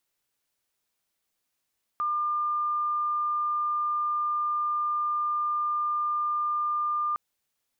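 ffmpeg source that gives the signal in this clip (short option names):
-f lavfi -i "aevalsrc='0.0596*sin(2*PI*1200*t)':d=5.16:s=44100"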